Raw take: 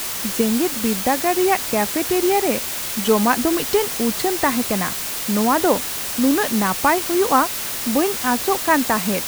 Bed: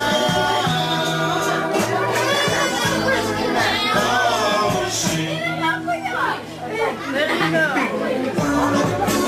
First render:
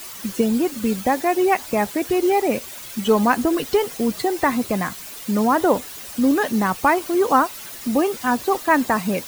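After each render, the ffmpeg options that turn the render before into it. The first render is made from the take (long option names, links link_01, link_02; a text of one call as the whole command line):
ffmpeg -i in.wav -af "afftdn=noise_reduction=12:noise_floor=-27" out.wav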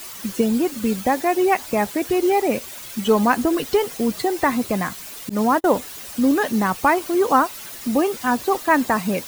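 ffmpeg -i in.wav -filter_complex "[0:a]asettb=1/sr,asplit=3[link_01][link_02][link_03];[link_01]atrim=end=5.294[link_04];[link_02]atrim=start=5.29:end=5.74,asetpts=PTS-STARTPTS,afade=type=in:duration=0.004:curve=qsin,afade=type=out:start_time=0.446:duration=0.004:curve=qsin,agate=range=-40dB:threshold=-20dB:ratio=16:release=100:detection=peak[link_05];[link_03]atrim=start=5.736[link_06];[link_04][link_05]acrossfade=duration=0.004:curve1=hsin:curve2=qsin[link_07];[link_07][link_06]acrossfade=duration=0.004:curve1=qsin:curve2=hsin" out.wav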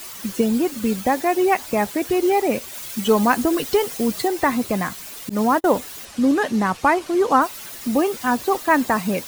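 ffmpeg -i in.wav -filter_complex "[0:a]asettb=1/sr,asplit=3[link_01][link_02][link_03];[link_01]atrim=end=2.744[link_04];[link_02]atrim=start=2.74:end=4.28,asetpts=PTS-STARTPTS,afade=type=in:duration=0.004:curve=qsin,afade=type=out:start_time=1.536:duration=0.004:curve=qsin,highshelf=frequency=4100:gain=3.5[link_05];[link_03]atrim=start=4.276[link_06];[link_04][link_05]acrossfade=duration=0.004:curve1=hsin:curve2=qsin[link_07];[link_07][link_06]acrossfade=duration=0.004:curve1=qsin:curve2=hsin,asettb=1/sr,asplit=3[link_08][link_09][link_10];[link_08]atrim=end=6.054[link_11];[link_09]atrim=start=6.05:end=7.42,asetpts=PTS-STARTPTS,afade=type=in:duration=0.004:curve=qsin,afade=type=out:start_time=1.366:duration=0.004:curve=qsin,adynamicsmooth=sensitivity=8:basefreq=6400[link_12];[link_10]atrim=start=7.416[link_13];[link_11][link_12]acrossfade=duration=0.004:curve1=hsin:curve2=qsin[link_14];[link_14][link_13]acrossfade=duration=0.004:curve1=qsin:curve2=hsin" out.wav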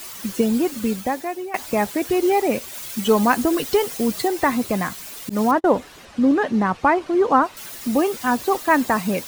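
ffmpeg -i in.wav -filter_complex "[0:a]asettb=1/sr,asplit=3[link_01][link_02][link_03];[link_01]atrim=end=5.514[link_04];[link_02]atrim=start=5.51:end=7.57,asetpts=PTS-STARTPTS,afade=type=in:duration=0.004:curve=qsin,afade=type=out:start_time=2.056:duration=0.004:curve=qsin,aemphasis=mode=reproduction:type=75fm[link_05];[link_03]atrim=start=7.566[link_06];[link_04][link_05]acrossfade=duration=0.004:curve1=hsin:curve2=qsin[link_07];[link_07][link_06]acrossfade=duration=0.004:curve1=qsin:curve2=hsin,asplit=2[link_08][link_09];[link_08]atrim=end=1.54,asetpts=PTS-STARTPTS,afade=type=out:start_time=0.78:duration=0.76:silence=0.11885[link_10];[link_09]atrim=start=1.54,asetpts=PTS-STARTPTS,afade=type=in:duration=0.004:curve=hsin:silence=0.11885[link_11];[link_10][link_11]concat=n=2:v=0:a=1" out.wav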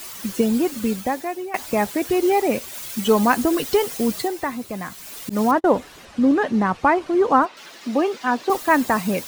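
ffmpeg -i in.wav -filter_complex "[0:a]asettb=1/sr,asplit=3[link_01][link_02][link_03];[link_01]atrim=end=7.454[link_04];[link_02]atrim=start=7.45:end=8.5,asetpts=PTS-STARTPTS,afade=type=in:duration=0.004:curve=qsin,afade=type=out:start_time=1.046:duration=0.004:curve=qsin,acrossover=split=200 5800:gain=0.0794 1 0.1[link_05][link_06][link_07];[link_05][link_06][link_07]amix=inputs=3:normalize=0[link_08];[link_03]atrim=start=8.496[link_09];[link_04][link_08]acrossfade=duration=0.004:curve1=hsin:curve2=qsin[link_10];[link_10][link_09]acrossfade=duration=0.004:curve1=qsin:curve2=hsin,asplit=3[link_11][link_12][link_13];[link_11]atrim=end=4.61,asetpts=PTS-STARTPTS,afade=type=out:start_time=4.14:duration=0.47:curve=qua:silence=0.398107[link_14];[link_12]atrim=start=4.61:end=4.68,asetpts=PTS-STARTPTS,volume=-8dB[link_15];[link_13]atrim=start=4.68,asetpts=PTS-STARTPTS,afade=type=in:duration=0.47:curve=qua:silence=0.398107[link_16];[link_14][link_15][link_16]concat=n=3:v=0:a=1" out.wav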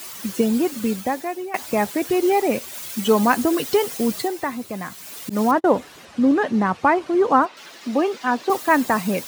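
ffmpeg -i in.wav -af "highpass=86" out.wav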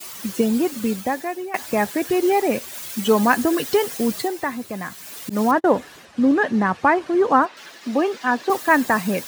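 ffmpeg -i in.wav -af "agate=range=-33dB:threshold=-40dB:ratio=3:detection=peak,adynamicequalizer=threshold=0.00794:dfrequency=1700:dqfactor=7.3:tfrequency=1700:tqfactor=7.3:attack=5:release=100:ratio=0.375:range=3.5:mode=boostabove:tftype=bell" out.wav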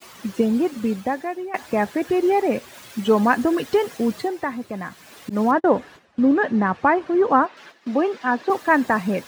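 ffmpeg -i in.wav -af "agate=range=-10dB:threshold=-40dB:ratio=16:detection=peak,lowpass=frequency=2200:poles=1" out.wav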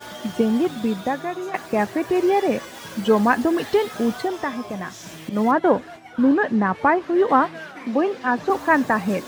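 ffmpeg -i in.wav -i bed.wav -filter_complex "[1:a]volume=-19dB[link_01];[0:a][link_01]amix=inputs=2:normalize=0" out.wav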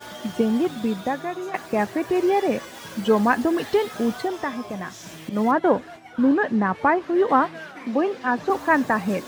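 ffmpeg -i in.wav -af "volume=-1.5dB" out.wav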